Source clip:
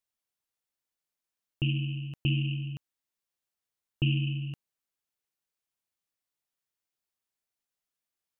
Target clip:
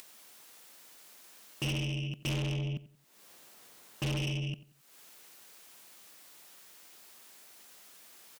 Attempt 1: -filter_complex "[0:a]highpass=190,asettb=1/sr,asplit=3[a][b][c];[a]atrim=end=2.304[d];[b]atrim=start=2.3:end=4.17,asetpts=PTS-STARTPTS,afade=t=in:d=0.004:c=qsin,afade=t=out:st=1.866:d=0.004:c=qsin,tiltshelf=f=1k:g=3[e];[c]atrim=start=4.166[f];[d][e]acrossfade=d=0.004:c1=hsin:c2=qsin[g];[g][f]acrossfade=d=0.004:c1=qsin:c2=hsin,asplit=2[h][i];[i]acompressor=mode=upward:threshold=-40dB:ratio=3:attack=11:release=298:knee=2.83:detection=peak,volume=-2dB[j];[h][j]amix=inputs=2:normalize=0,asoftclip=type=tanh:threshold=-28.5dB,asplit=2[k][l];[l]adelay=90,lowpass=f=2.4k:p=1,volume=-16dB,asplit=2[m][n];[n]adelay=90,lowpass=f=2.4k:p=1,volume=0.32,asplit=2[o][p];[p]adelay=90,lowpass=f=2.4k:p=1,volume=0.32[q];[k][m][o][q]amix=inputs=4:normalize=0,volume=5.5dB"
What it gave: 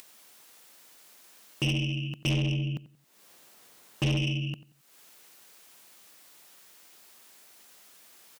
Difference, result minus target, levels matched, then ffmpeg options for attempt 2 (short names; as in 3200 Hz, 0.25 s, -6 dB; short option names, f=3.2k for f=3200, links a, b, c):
soft clip: distortion -4 dB
-filter_complex "[0:a]highpass=190,asettb=1/sr,asplit=3[a][b][c];[a]atrim=end=2.304[d];[b]atrim=start=2.3:end=4.17,asetpts=PTS-STARTPTS,afade=t=in:d=0.004:c=qsin,afade=t=out:st=1.866:d=0.004:c=qsin,tiltshelf=f=1k:g=3[e];[c]atrim=start=4.166[f];[d][e]acrossfade=d=0.004:c1=hsin:c2=qsin[g];[g][f]acrossfade=d=0.004:c1=qsin:c2=hsin,asplit=2[h][i];[i]acompressor=mode=upward:threshold=-40dB:ratio=3:attack=11:release=298:knee=2.83:detection=peak,volume=-2dB[j];[h][j]amix=inputs=2:normalize=0,asoftclip=type=tanh:threshold=-36dB,asplit=2[k][l];[l]adelay=90,lowpass=f=2.4k:p=1,volume=-16dB,asplit=2[m][n];[n]adelay=90,lowpass=f=2.4k:p=1,volume=0.32,asplit=2[o][p];[p]adelay=90,lowpass=f=2.4k:p=1,volume=0.32[q];[k][m][o][q]amix=inputs=4:normalize=0,volume=5.5dB"